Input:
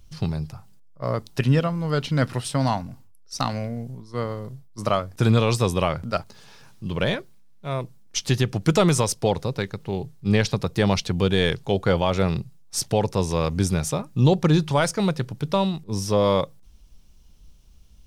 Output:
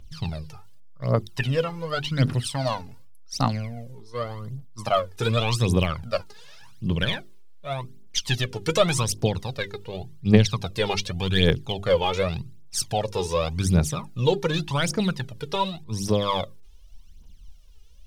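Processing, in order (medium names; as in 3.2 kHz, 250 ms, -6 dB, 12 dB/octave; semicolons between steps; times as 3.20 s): peaking EQ 3.2 kHz +4.5 dB 1 oct; hum notches 50/100/150/200/250/300/350/400 Hz; phaser 0.87 Hz, delay 2.5 ms, feedback 73%; trim -5 dB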